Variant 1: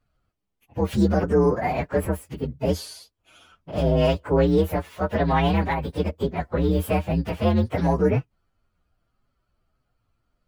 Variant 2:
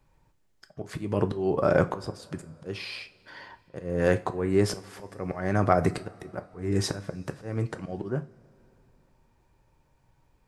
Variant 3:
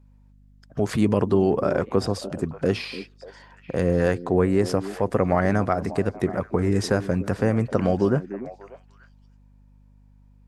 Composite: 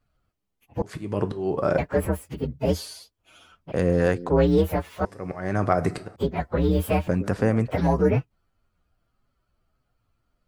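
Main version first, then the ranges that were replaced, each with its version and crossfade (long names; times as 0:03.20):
1
0:00.82–0:01.78: punch in from 2
0:03.72–0:04.30: punch in from 3
0:05.05–0:06.16: punch in from 2
0:07.08–0:07.71: punch in from 3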